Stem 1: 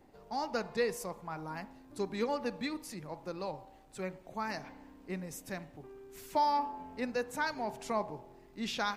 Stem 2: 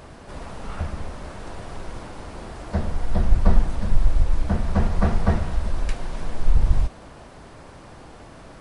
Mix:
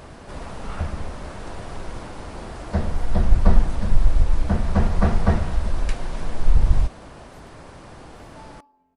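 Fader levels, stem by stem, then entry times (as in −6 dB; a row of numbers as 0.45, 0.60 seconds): −19.5, +1.5 decibels; 2.00, 0.00 seconds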